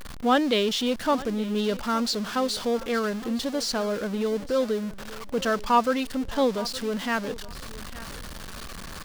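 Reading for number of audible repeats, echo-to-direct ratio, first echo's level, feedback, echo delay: 2, -18.0 dB, -18.0 dB, 21%, 866 ms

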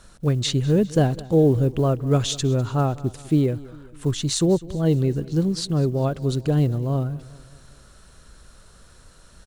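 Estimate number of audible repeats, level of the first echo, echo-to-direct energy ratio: 3, -20.0 dB, -18.5 dB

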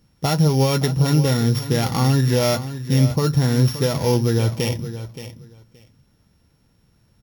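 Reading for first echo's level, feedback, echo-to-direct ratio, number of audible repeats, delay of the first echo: -12.5 dB, 16%, -12.5 dB, 2, 573 ms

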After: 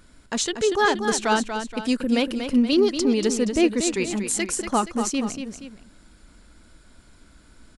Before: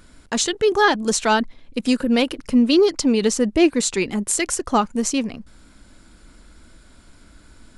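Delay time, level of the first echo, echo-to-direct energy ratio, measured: 237 ms, -8.0 dB, -7.0 dB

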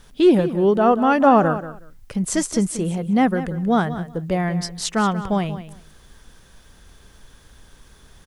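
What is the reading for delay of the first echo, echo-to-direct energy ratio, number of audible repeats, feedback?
184 ms, -13.0 dB, 2, 17%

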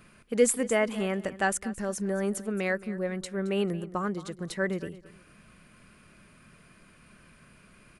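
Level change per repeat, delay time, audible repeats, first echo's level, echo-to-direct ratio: -12.5 dB, 221 ms, 2, -17.0 dB, -17.0 dB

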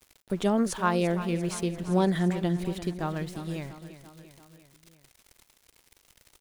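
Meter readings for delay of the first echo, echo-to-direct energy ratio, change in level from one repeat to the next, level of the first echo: 343 ms, -11.0 dB, -4.5 dB, -13.0 dB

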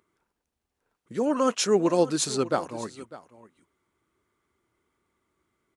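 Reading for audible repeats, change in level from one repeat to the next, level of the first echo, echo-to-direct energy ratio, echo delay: 1, no regular repeats, -17.5 dB, -17.5 dB, 600 ms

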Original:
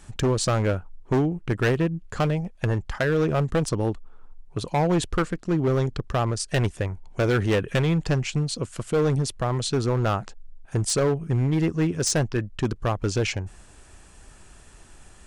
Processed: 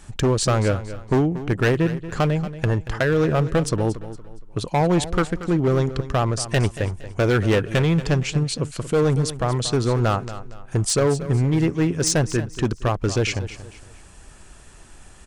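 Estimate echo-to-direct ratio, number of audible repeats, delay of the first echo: -13.5 dB, 3, 232 ms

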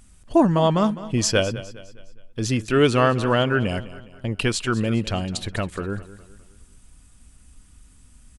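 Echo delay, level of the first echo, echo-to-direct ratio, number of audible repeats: 206 ms, -16.0 dB, -15.0 dB, 3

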